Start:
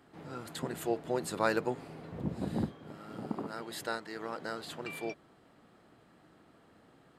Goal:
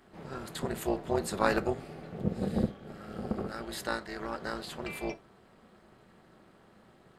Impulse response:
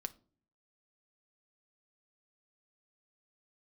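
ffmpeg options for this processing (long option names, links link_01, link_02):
-filter_complex "[1:a]atrim=start_sample=2205,afade=type=out:start_time=0.15:duration=0.01,atrim=end_sample=7056[link_01];[0:a][link_01]afir=irnorm=-1:irlink=0,tremolo=f=290:d=0.788,asettb=1/sr,asplit=3[link_02][link_03][link_04];[link_02]atrim=end=1.614[link_05];[link_03]atrim=start=1.61:end=3.68,asetpts=PTS-STARTPTS,afade=type=in:duration=0.004:curve=qsin,afade=type=out:start_time=2.066:duration=0.004:curve=qsin,bandreject=frequency=980:width=5.2[link_06];[link_04]atrim=start=3.676[link_07];[link_05][link_06]acrossfade=duration=0.004:curve1=hsin:curve2=qsin[link_08];[link_08][link_07]acrossfade=duration=0.004:curve1=qsin:curve2=hsin,volume=8dB"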